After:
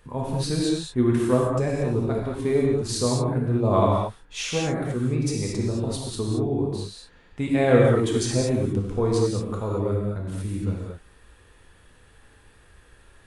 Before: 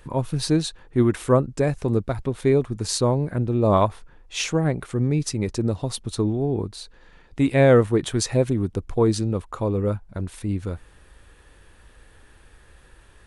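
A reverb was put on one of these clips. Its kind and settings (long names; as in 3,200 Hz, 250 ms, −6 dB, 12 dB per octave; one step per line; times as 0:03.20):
reverb whose tail is shaped and stops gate 250 ms flat, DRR −3 dB
level −6 dB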